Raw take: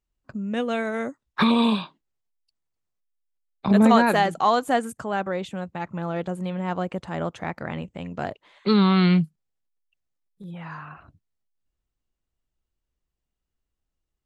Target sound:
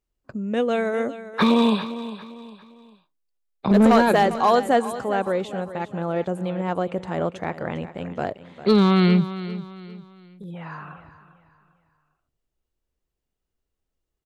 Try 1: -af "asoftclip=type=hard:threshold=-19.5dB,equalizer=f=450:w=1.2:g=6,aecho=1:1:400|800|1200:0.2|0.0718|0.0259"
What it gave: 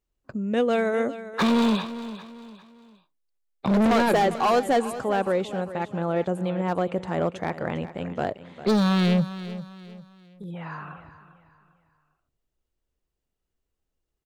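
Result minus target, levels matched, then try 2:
hard clip: distortion +11 dB
-af "asoftclip=type=hard:threshold=-12.5dB,equalizer=f=450:w=1.2:g=6,aecho=1:1:400|800|1200:0.2|0.0718|0.0259"

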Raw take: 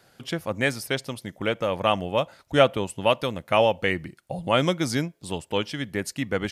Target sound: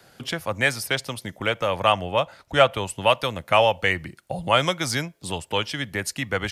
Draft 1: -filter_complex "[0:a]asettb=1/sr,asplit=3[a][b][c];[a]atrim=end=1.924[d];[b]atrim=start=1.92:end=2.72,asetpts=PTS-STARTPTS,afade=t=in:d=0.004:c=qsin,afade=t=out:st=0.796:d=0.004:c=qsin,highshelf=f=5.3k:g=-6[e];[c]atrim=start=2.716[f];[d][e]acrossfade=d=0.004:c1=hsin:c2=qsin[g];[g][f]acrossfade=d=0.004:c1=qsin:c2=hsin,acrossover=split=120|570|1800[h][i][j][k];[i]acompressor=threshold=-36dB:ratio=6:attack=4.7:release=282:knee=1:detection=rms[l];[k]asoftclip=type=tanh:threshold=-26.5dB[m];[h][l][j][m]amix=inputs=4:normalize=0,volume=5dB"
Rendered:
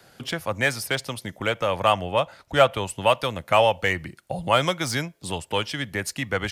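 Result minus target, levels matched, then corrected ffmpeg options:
soft clip: distortion +11 dB
-filter_complex "[0:a]asettb=1/sr,asplit=3[a][b][c];[a]atrim=end=1.924[d];[b]atrim=start=1.92:end=2.72,asetpts=PTS-STARTPTS,afade=t=in:d=0.004:c=qsin,afade=t=out:st=0.796:d=0.004:c=qsin,highshelf=f=5.3k:g=-6[e];[c]atrim=start=2.716[f];[d][e]acrossfade=d=0.004:c1=hsin:c2=qsin[g];[g][f]acrossfade=d=0.004:c1=qsin:c2=hsin,acrossover=split=120|570|1800[h][i][j][k];[i]acompressor=threshold=-36dB:ratio=6:attack=4.7:release=282:knee=1:detection=rms[l];[k]asoftclip=type=tanh:threshold=-17dB[m];[h][l][j][m]amix=inputs=4:normalize=0,volume=5dB"

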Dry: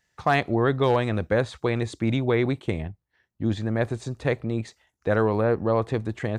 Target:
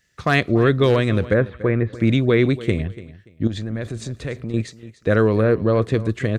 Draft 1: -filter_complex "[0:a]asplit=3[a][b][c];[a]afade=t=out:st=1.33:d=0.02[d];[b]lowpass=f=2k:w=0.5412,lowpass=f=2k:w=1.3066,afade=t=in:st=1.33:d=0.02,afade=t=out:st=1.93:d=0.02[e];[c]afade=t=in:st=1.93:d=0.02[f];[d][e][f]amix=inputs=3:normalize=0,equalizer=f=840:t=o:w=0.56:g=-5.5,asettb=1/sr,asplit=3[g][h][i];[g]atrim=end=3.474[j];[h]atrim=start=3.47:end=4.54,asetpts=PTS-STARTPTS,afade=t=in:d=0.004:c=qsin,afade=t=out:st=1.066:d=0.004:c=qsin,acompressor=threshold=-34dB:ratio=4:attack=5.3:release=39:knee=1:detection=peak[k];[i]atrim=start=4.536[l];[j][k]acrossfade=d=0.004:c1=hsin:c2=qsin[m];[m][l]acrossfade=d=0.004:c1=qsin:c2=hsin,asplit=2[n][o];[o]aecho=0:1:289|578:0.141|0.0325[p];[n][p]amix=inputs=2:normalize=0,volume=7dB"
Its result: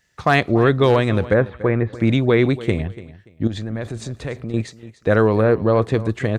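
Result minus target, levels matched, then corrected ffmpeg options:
1000 Hz band +3.5 dB
-filter_complex "[0:a]asplit=3[a][b][c];[a]afade=t=out:st=1.33:d=0.02[d];[b]lowpass=f=2k:w=0.5412,lowpass=f=2k:w=1.3066,afade=t=in:st=1.33:d=0.02,afade=t=out:st=1.93:d=0.02[e];[c]afade=t=in:st=1.93:d=0.02[f];[d][e][f]amix=inputs=3:normalize=0,equalizer=f=840:t=o:w=0.56:g=-15.5,asettb=1/sr,asplit=3[g][h][i];[g]atrim=end=3.474[j];[h]atrim=start=3.47:end=4.54,asetpts=PTS-STARTPTS,afade=t=in:d=0.004:c=qsin,afade=t=out:st=1.066:d=0.004:c=qsin,acompressor=threshold=-34dB:ratio=4:attack=5.3:release=39:knee=1:detection=peak[k];[i]atrim=start=4.536[l];[j][k]acrossfade=d=0.004:c1=hsin:c2=qsin[m];[m][l]acrossfade=d=0.004:c1=qsin:c2=hsin,asplit=2[n][o];[o]aecho=0:1:289|578:0.141|0.0325[p];[n][p]amix=inputs=2:normalize=0,volume=7dB"

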